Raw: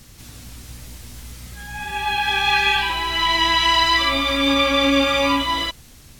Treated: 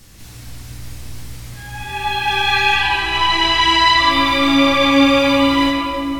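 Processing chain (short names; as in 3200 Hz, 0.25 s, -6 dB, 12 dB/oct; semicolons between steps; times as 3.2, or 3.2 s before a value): 2.74–4.1 LPF 11000 Hz 12 dB/oct; reverb RT60 3.3 s, pre-delay 3 ms, DRR -3 dB; gain -1 dB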